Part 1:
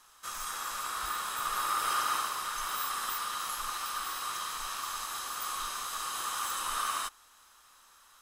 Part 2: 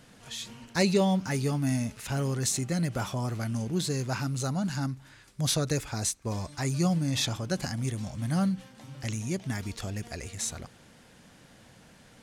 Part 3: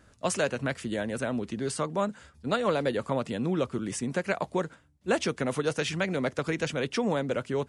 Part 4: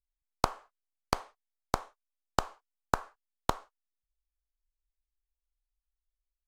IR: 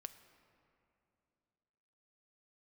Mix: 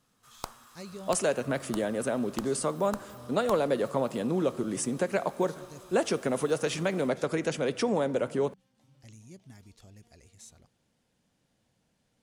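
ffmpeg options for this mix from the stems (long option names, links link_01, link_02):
-filter_complex "[0:a]asoftclip=type=tanh:threshold=-36.5dB,volume=-18.5dB,asplit=2[link_01][link_02];[link_02]volume=-3.5dB[link_03];[1:a]volume=-18dB[link_04];[2:a]aemphasis=mode=production:type=riaa,agate=range=-33dB:threshold=-54dB:ratio=3:detection=peak,tiltshelf=frequency=1500:gain=9.5,adelay=850,volume=1.5dB,asplit=2[link_05][link_06];[link_06]volume=-5dB[link_07];[3:a]crystalizer=i=2:c=0,volume=-15dB,asplit=2[link_08][link_09];[link_09]volume=-3dB[link_10];[link_04][link_05]amix=inputs=2:normalize=0,equalizer=frequency=1600:width=1.1:gain=-5,acompressor=threshold=-38dB:ratio=2,volume=0dB[link_11];[4:a]atrim=start_sample=2205[link_12];[link_03][link_07][link_10]amix=inputs=3:normalize=0[link_13];[link_13][link_12]afir=irnorm=-1:irlink=0[link_14];[link_01][link_08][link_11][link_14]amix=inputs=4:normalize=0"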